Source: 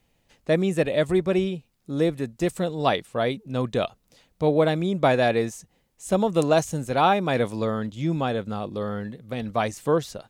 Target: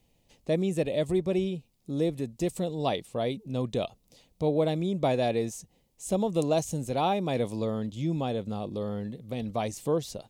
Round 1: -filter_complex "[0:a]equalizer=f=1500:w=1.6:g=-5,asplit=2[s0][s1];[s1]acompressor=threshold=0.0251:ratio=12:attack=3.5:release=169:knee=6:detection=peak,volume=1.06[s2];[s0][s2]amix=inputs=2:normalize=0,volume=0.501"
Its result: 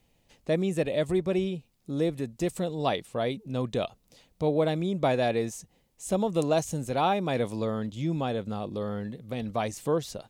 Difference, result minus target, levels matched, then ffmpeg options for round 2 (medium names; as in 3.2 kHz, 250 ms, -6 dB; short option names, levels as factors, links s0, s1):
2 kHz band +3.5 dB
-filter_complex "[0:a]equalizer=f=1500:w=1.6:g=-13,asplit=2[s0][s1];[s1]acompressor=threshold=0.0251:ratio=12:attack=3.5:release=169:knee=6:detection=peak,volume=1.06[s2];[s0][s2]amix=inputs=2:normalize=0,volume=0.501"